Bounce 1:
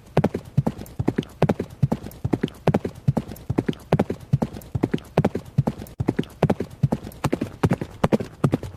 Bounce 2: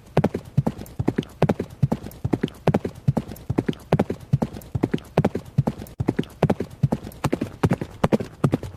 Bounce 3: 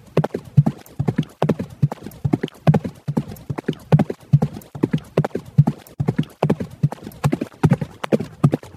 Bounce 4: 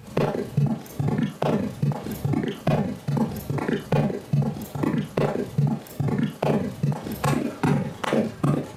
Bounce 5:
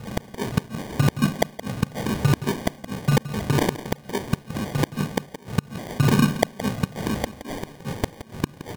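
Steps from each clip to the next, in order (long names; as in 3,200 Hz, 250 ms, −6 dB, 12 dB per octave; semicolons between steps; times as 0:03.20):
no processing that can be heard
dynamic equaliser 150 Hz, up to +7 dB, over −34 dBFS, Q 4.2; through-zero flanger with one copy inverted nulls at 1.8 Hz, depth 3.5 ms; level +4 dB
downward compressor 3 to 1, threshold −26 dBFS, peak gain reduction 14.5 dB; four-comb reverb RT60 0.32 s, combs from 28 ms, DRR −3 dB; level +1.5 dB
gate with flip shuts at −13 dBFS, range −32 dB; decimation without filtering 33×; single-tap delay 170 ms −13.5 dB; level +6 dB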